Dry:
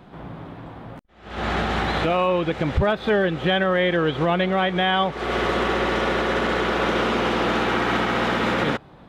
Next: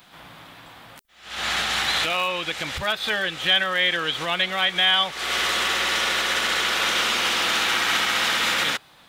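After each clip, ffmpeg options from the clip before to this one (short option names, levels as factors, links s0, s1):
-af "tiltshelf=f=890:g=-9,bandreject=f=400:w=12,crystalizer=i=4:c=0,volume=0.501"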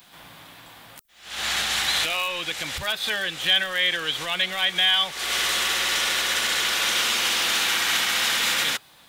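-filter_complex "[0:a]highshelf=f=5500:g=10,bandreject=f=1300:w=22,acrossover=split=110|1200[s0][s1][s2];[s1]asoftclip=type=tanh:threshold=0.0422[s3];[s0][s3][s2]amix=inputs=3:normalize=0,volume=0.75"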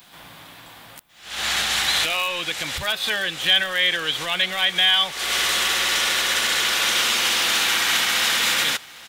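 -af "aecho=1:1:807:0.0794,volume=1.33"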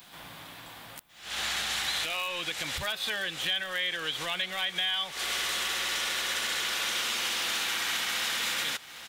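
-af "acompressor=threshold=0.0355:ratio=2.5,volume=0.75"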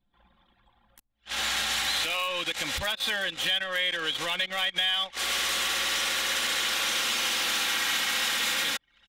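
-filter_complex "[0:a]anlmdn=1.58,aecho=1:1:3.7:0.33,asplit=2[s0][s1];[s1]asoftclip=type=tanh:threshold=0.0398,volume=0.316[s2];[s0][s2]amix=inputs=2:normalize=0,volume=1.12"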